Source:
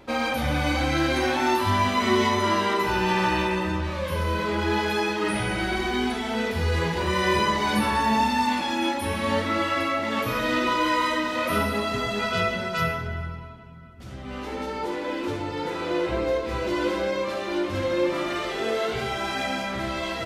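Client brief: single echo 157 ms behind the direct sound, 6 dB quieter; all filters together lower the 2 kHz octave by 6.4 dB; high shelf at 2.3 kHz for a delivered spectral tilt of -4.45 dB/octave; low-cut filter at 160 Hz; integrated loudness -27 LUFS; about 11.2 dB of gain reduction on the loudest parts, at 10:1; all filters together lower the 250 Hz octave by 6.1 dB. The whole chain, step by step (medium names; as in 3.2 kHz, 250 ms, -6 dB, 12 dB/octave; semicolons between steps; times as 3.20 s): high-pass 160 Hz; peaking EQ 250 Hz -7.5 dB; peaking EQ 2 kHz -6 dB; treble shelf 2.3 kHz -4 dB; compression 10:1, threshold -33 dBFS; delay 157 ms -6 dB; trim +9 dB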